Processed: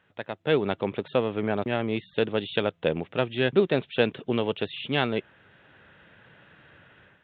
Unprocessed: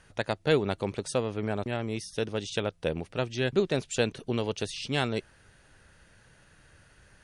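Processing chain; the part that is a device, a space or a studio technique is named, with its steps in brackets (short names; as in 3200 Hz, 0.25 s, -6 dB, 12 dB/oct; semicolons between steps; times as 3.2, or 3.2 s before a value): Bluetooth headset (HPF 140 Hz 12 dB/oct; AGC gain up to 12 dB; downsampling 8000 Hz; gain -5.5 dB; SBC 64 kbps 16000 Hz)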